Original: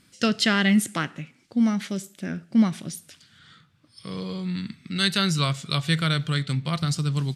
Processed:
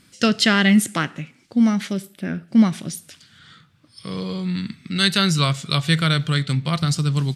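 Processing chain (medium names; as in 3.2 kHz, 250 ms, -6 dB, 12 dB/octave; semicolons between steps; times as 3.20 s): 1.93–2.48 s: peaking EQ 6.8 kHz -14 dB 0.59 oct; trim +4.5 dB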